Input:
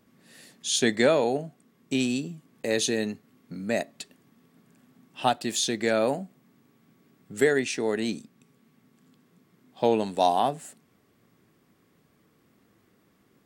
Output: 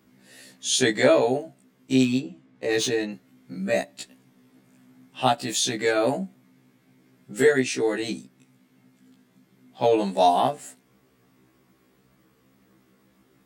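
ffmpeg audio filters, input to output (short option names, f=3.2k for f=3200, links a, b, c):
-filter_complex "[0:a]asplit=3[a][b][c];[a]afade=t=out:st=2.01:d=0.02[d];[b]adynamicsmooth=sensitivity=4:basefreq=4.2k,afade=t=in:st=2.01:d=0.02,afade=t=out:st=3.11:d=0.02[e];[c]afade=t=in:st=3.11:d=0.02[f];[d][e][f]amix=inputs=3:normalize=0,afftfilt=real='re*1.73*eq(mod(b,3),0)':imag='im*1.73*eq(mod(b,3),0)':win_size=2048:overlap=0.75,volume=5dB"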